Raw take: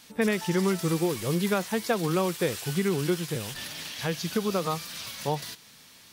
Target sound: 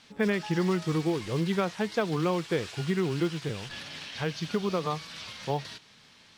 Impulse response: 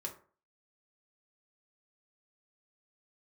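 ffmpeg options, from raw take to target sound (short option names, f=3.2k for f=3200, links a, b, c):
-af "lowpass=5.1k,acrusher=bits=9:mode=log:mix=0:aa=0.000001,asetrate=42336,aresample=44100,volume=-1.5dB"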